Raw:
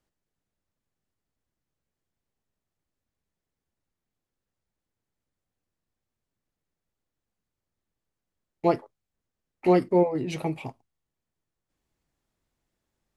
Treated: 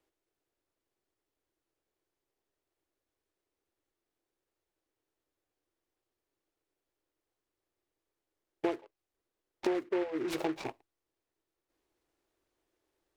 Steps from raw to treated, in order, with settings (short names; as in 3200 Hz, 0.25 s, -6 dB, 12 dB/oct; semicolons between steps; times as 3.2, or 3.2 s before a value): resonant low shelf 260 Hz -8.5 dB, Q 3; compressor 10:1, threshold -29 dBFS, peak gain reduction 18.5 dB; noise-modulated delay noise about 1400 Hz, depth 0.071 ms